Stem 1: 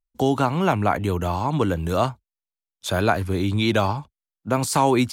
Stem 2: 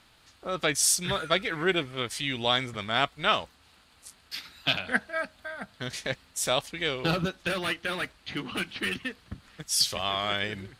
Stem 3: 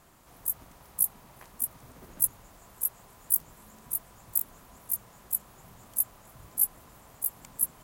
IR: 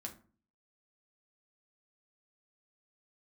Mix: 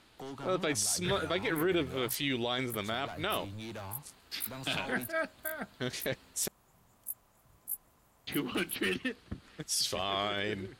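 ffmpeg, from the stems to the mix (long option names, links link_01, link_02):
-filter_complex "[0:a]asoftclip=type=tanh:threshold=-21.5dB,volume=-17dB[link_01];[1:a]equalizer=frequency=360:width=1.2:gain=7.5,volume=-3dB,asplit=3[link_02][link_03][link_04];[link_02]atrim=end=6.48,asetpts=PTS-STARTPTS,afade=type=out:start_time=6.476:duration=0.004:curve=hsin[link_05];[link_03]atrim=start=6.48:end=8.27,asetpts=PTS-STARTPTS,volume=0[link_06];[link_04]atrim=start=8.27,asetpts=PTS-STARTPTS,afade=type=in:duration=0.004:curve=hsin[link_07];[link_05][link_06][link_07]concat=n=3:v=0:a=1[link_08];[2:a]adelay=1100,volume=-13dB[link_09];[link_01][link_08][link_09]amix=inputs=3:normalize=0,alimiter=limit=-21.5dB:level=0:latency=1:release=13"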